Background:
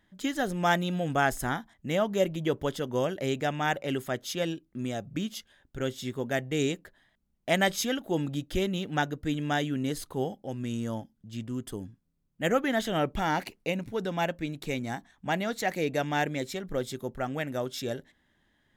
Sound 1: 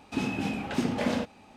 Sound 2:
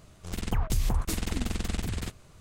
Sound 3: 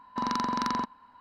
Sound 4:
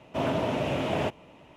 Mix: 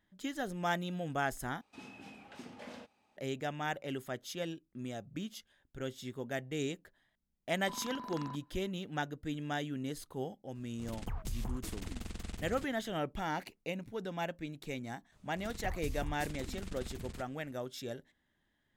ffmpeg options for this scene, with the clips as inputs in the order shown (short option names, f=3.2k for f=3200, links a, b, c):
-filter_complex "[2:a]asplit=2[a][b];[0:a]volume=-8.5dB[c];[1:a]lowshelf=f=340:g=-8.5[d];[a]acrusher=bits=11:mix=0:aa=0.000001[e];[c]asplit=2[f][g];[f]atrim=end=1.614[h];[d]atrim=end=1.56,asetpts=PTS-STARTPTS,volume=-17dB[i];[g]atrim=start=3.166[j];[3:a]atrim=end=1.2,asetpts=PTS-STARTPTS,volume=-16dB,afade=t=in:d=0.004:c=hsin,afade=t=out:st=1.196:d=0.004:c=hsin,adelay=7510[k];[e]atrim=end=2.4,asetpts=PTS-STARTPTS,volume=-12dB,afade=t=in:d=0.004:c=hsin,afade=t=out:st=2.396:d=0.004:c=hsin,adelay=10550[l];[b]atrim=end=2.4,asetpts=PTS-STARTPTS,volume=-13.5dB,afade=t=in:d=0.004:c=hsin,afade=t=out:st=2.396:d=0.004:c=hsin,adelay=15120[m];[h][i]acrossfade=d=0.004:c1=hsin:c2=hsin[n];[n][j]acrossfade=d=0.004:c1=hsin:c2=hsin[o];[o][k][l][m]amix=inputs=4:normalize=0"